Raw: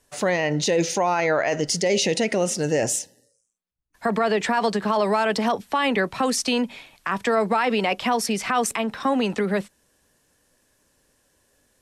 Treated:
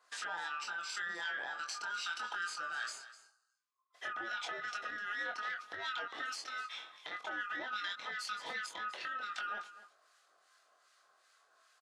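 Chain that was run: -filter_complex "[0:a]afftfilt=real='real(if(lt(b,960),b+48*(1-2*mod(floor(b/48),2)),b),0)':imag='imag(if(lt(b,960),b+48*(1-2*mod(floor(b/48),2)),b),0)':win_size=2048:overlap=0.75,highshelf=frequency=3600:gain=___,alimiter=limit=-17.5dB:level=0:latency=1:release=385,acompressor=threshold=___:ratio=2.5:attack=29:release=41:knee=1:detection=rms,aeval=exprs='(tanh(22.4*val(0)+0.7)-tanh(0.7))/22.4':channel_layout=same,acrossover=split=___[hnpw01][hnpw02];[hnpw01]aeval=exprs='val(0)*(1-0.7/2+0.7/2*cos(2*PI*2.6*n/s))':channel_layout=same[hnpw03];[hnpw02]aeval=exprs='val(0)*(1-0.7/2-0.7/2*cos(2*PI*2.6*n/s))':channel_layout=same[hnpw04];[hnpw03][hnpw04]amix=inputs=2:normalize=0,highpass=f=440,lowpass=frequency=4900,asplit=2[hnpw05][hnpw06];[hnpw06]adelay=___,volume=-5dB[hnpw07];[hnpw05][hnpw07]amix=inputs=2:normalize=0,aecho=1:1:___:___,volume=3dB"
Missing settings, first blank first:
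3.5, -42dB, 1300, 23, 252, 0.168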